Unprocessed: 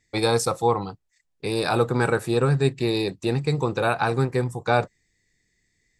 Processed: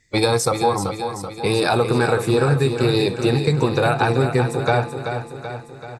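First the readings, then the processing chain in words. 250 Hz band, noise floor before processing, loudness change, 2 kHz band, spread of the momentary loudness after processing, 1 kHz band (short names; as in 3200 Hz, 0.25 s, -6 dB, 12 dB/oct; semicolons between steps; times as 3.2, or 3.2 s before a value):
+4.5 dB, -73 dBFS, +4.0 dB, +4.0 dB, 10 LU, +4.0 dB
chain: bin magnitudes rounded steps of 15 dB; de-hum 170.8 Hz, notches 28; compressor, threshold -22 dBFS, peak gain reduction 7.5 dB; on a send: feedback echo 0.383 s, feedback 56%, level -8 dB; on the sum: gain +8 dB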